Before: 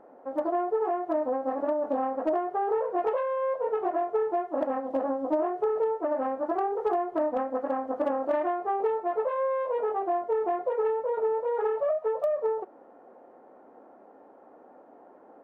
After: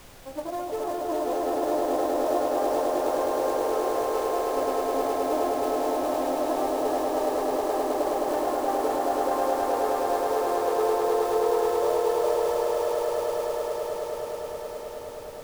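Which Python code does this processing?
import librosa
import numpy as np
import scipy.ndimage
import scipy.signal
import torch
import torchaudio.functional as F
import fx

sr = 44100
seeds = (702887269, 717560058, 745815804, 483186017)

y = fx.quant_float(x, sr, bits=2)
y = fx.echo_swell(y, sr, ms=105, loudest=8, wet_db=-4)
y = fx.dmg_noise_colour(y, sr, seeds[0], colour='pink', level_db=-44.0)
y = y * librosa.db_to_amplitude(-5.0)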